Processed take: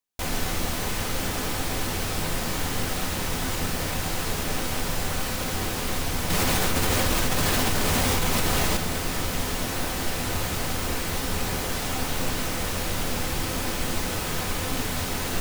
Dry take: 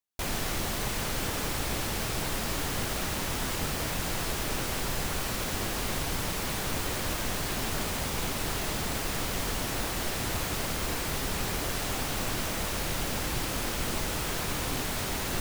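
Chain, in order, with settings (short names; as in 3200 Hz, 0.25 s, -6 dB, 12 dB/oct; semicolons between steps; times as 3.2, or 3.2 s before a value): reverb RT60 0.60 s, pre-delay 4 ms, DRR 6 dB; 6.3–8.77 fast leveller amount 100%; gain +2 dB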